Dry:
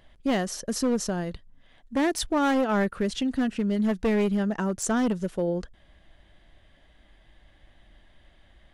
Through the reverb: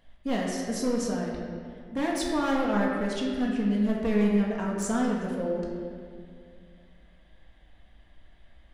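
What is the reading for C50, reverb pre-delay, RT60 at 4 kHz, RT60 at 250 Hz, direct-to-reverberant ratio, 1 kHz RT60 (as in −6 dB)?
0.5 dB, 4 ms, 1.4 s, 2.7 s, −3.5 dB, 2.0 s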